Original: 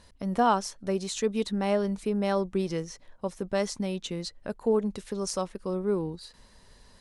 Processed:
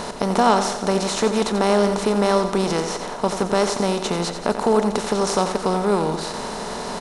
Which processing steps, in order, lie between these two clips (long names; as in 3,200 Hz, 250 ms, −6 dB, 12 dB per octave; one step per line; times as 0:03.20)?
compressor on every frequency bin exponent 0.4
repeating echo 88 ms, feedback 54%, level −9.5 dB
level +3.5 dB